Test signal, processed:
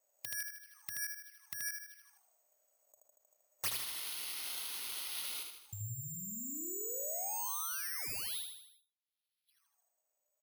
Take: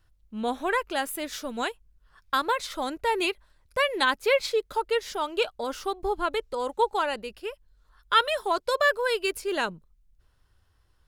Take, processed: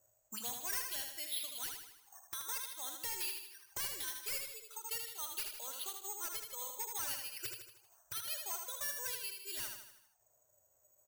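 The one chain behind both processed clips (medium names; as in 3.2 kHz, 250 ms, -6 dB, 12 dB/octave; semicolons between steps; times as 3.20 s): added noise blue -62 dBFS; auto-wah 550–5000 Hz, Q 12, up, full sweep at -29.5 dBFS; compression 20:1, threshold -52 dBFS; distance through air 89 m; careless resampling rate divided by 6×, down filtered, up zero stuff; sine folder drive 20 dB, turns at -22.5 dBFS; spectral noise reduction 8 dB; peaking EQ 110 Hz +14 dB 0.43 oct; feedback delay 78 ms, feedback 51%, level -5 dB; gain riding within 5 dB 2 s; endings held to a fixed fall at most 180 dB/s; trim -6 dB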